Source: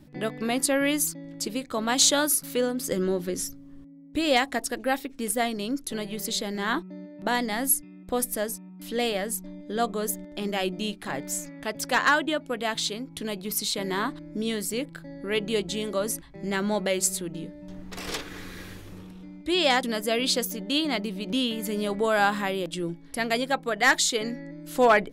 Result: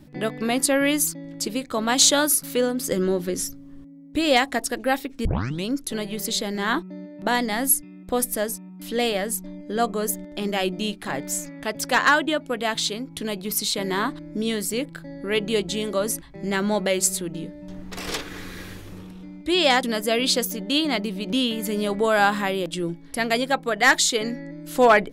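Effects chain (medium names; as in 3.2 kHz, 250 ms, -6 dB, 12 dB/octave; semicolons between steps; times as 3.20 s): 5.25 s: tape start 0.40 s; 9.57–10.12 s: band-stop 3.6 kHz, Q 7.1; trim +3.5 dB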